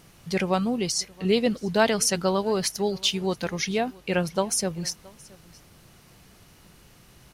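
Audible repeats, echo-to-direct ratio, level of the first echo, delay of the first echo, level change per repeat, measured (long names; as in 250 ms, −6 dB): 1, −24.0 dB, −24.0 dB, 673 ms, repeats not evenly spaced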